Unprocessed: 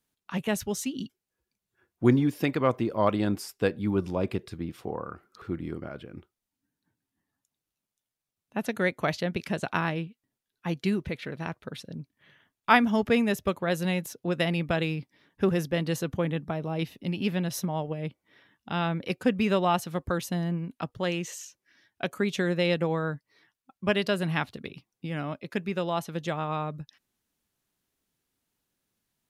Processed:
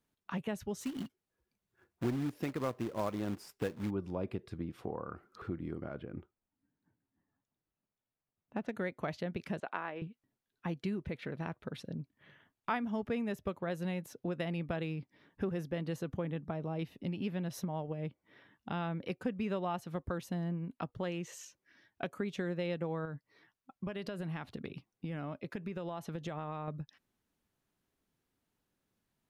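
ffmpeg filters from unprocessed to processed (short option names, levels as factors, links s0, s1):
-filter_complex "[0:a]asplit=3[s0][s1][s2];[s0]afade=t=out:st=0.8:d=0.02[s3];[s1]acrusher=bits=2:mode=log:mix=0:aa=0.000001,afade=t=in:st=0.8:d=0.02,afade=t=out:st=3.89:d=0.02[s4];[s2]afade=t=in:st=3.89:d=0.02[s5];[s3][s4][s5]amix=inputs=3:normalize=0,asettb=1/sr,asplit=3[s6][s7][s8];[s6]atrim=end=5.884[s9];[s7]atrim=start=5.88:end=8.73,asetpts=PTS-STARTPTS,afade=t=in:d=0.004:c=qsin,afade=t=out:st=2.846:d=0.004:c=qsin,adynamicsmooth=sensitivity=7.5:basefreq=3100[s10];[s8]atrim=start=8.726[s11];[s9][s10]acrossfade=d=0.004:c1=hsin:c2=qsin[s12];[s12][s11]acrossfade=d=0.004:c1=qsin:c2=hsin,asettb=1/sr,asplit=3[s13][s14][s15];[s13]atrim=end=9.604[s16];[s14]atrim=start=9.6:end=10.02,asetpts=PTS-STARTPTS,afade=t=in:d=0.004:c=qsin,afade=t=out:st=0.416:d=0.004:c=qsin,highpass=430,lowpass=2800[s17];[s15]atrim=start=10.016[s18];[s16][s17]acrossfade=d=0.004:c1=hsin:c2=qsin[s19];[s19][s18]acrossfade=d=0.004:c1=qsin:c2=hsin,asettb=1/sr,asplit=3[s20][s21][s22];[s20]atrim=end=23.054[s23];[s21]atrim=start=23.05:end=26.68,asetpts=PTS-STARTPTS,afade=t=in:d=0.004:c=qsin,afade=t=out:st=3.626:d=0.004:c=qsin,acompressor=threshold=0.0251:ratio=6:attack=3.2:release=140:knee=1:detection=peak[s24];[s22]atrim=start=26.676[s25];[s23][s24]acrossfade=d=0.004:c1=hsin:c2=qsin[s26];[s26][s25]acrossfade=d=0.004:c1=qsin:c2=hsin,highshelf=f=2600:g=-9.5,acompressor=threshold=0.0112:ratio=2.5,volume=1.12"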